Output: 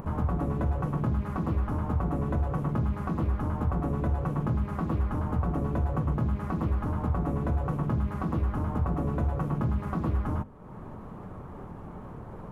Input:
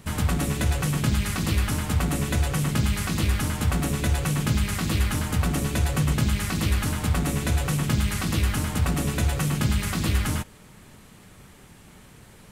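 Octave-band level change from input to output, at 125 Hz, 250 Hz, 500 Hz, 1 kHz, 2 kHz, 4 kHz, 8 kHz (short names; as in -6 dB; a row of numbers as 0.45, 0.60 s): -4.0 dB, -3.5 dB, -1.5 dB, -1.5 dB, -14.5 dB, under -25 dB, under -30 dB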